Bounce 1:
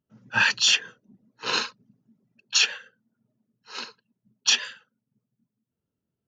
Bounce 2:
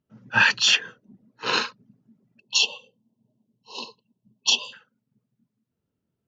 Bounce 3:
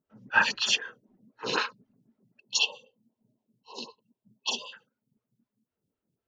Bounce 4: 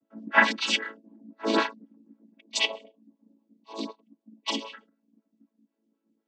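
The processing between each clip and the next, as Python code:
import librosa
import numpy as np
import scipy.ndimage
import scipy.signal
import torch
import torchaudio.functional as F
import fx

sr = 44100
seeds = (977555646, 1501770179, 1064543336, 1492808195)

y1 = fx.spec_erase(x, sr, start_s=2.4, length_s=2.33, low_hz=1100.0, high_hz=2600.0)
y1 = fx.high_shelf(y1, sr, hz=6100.0, db=-11.5)
y1 = F.gain(torch.from_numpy(y1), 4.0).numpy()
y2 = fx.stagger_phaser(y1, sr, hz=3.9)
y3 = fx.chord_vocoder(y2, sr, chord='major triad', root=57)
y3 = F.gain(torch.from_numpy(y3), 3.0).numpy()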